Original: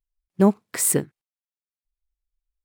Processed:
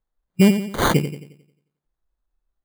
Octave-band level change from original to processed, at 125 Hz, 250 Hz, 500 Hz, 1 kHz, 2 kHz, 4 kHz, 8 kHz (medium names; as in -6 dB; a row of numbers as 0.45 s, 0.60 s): +6.5 dB, +4.0 dB, +1.0 dB, +6.5 dB, +9.5 dB, +11.0 dB, -9.5 dB